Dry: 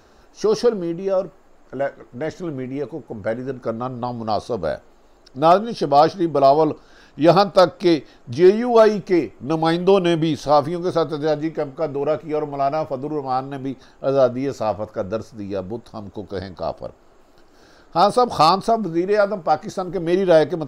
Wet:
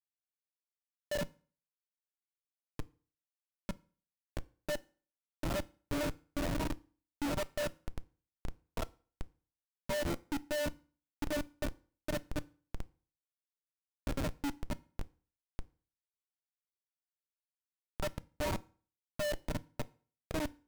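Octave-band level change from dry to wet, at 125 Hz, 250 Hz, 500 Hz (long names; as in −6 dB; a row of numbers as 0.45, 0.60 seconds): −16.0, −20.0, −24.0 decibels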